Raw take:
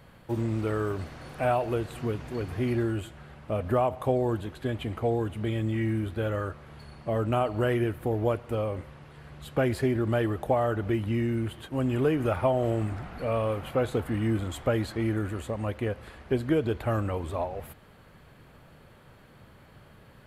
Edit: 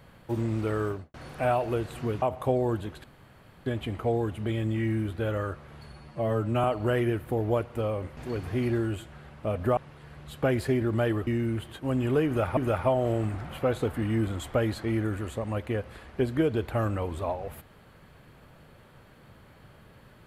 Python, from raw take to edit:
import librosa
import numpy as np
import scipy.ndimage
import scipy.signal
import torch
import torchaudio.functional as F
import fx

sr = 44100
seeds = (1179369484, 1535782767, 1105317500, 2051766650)

y = fx.studio_fade_out(x, sr, start_s=0.85, length_s=0.29)
y = fx.edit(y, sr, fx.move(start_s=2.22, length_s=1.6, to_s=8.91),
    fx.insert_room_tone(at_s=4.64, length_s=0.62),
    fx.stretch_span(start_s=6.9, length_s=0.48, factor=1.5),
    fx.cut(start_s=10.41, length_s=0.75),
    fx.repeat(start_s=12.15, length_s=0.31, count=2),
    fx.cut(start_s=13.07, length_s=0.54), tone=tone)